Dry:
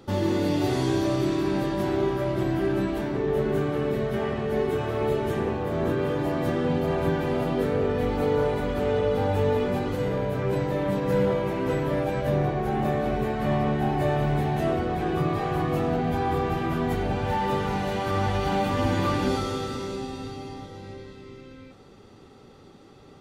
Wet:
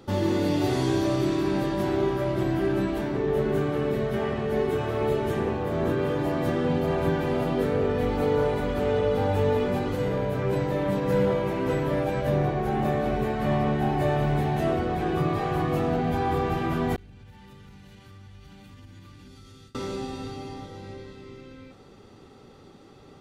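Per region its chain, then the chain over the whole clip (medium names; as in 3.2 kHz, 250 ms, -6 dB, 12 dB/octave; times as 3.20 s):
16.96–19.75 s: gate with hold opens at -19 dBFS, closes at -27 dBFS + amplifier tone stack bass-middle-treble 6-0-2 + compression 4:1, threshold -44 dBFS
whole clip: none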